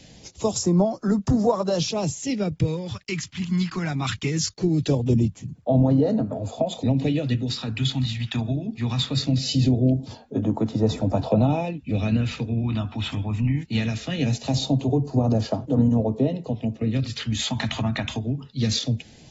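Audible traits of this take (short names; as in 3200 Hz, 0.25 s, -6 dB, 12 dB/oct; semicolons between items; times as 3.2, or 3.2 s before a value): phasing stages 2, 0.21 Hz, lowest notch 480–2300 Hz; a quantiser's noise floor 12-bit, dither none; AAC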